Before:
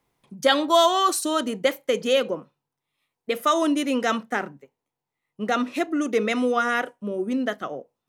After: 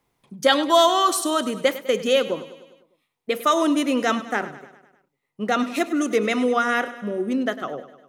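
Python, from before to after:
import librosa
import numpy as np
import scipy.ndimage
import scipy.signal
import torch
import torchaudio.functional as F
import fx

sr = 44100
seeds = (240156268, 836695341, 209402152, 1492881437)

y = fx.high_shelf(x, sr, hz=4100.0, db=6.5, at=(5.59, 6.16))
y = fx.echo_feedback(y, sr, ms=101, feedback_pct=57, wet_db=-15)
y = y * 10.0 ** (1.5 / 20.0)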